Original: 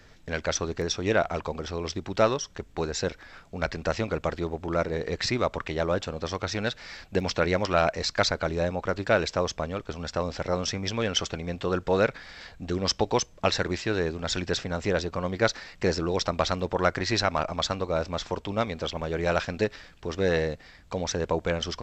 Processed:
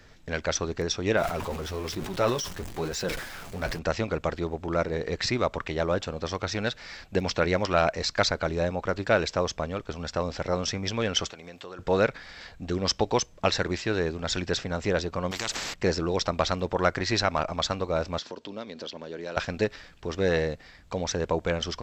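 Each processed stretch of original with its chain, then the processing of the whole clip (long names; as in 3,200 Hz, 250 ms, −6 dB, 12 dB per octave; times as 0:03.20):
0:01.17–0:03.79: converter with a step at zero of −33 dBFS + flanger 1.1 Hz, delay 4.6 ms, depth 6.7 ms, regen −37% + level that may fall only so fast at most 63 dB per second
0:11.30–0:11.79: high-pass filter 490 Hz 6 dB per octave + high-shelf EQ 6,300 Hz +5.5 dB + downward compressor 3 to 1, threshold −40 dBFS
0:15.31–0:15.74: downward compressor 2 to 1, threshold −29 dBFS + every bin compressed towards the loudest bin 4 to 1
0:18.19–0:19.37: downward compressor 2 to 1, threshold −36 dBFS + loudspeaker in its box 230–7,100 Hz, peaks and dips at 250 Hz +4 dB, 770 Hz −7 dB, 1,200 Hz −6 dB, 2,200 Hz −6 dB, 4,400 Hz +5 dB
whole clip: no processing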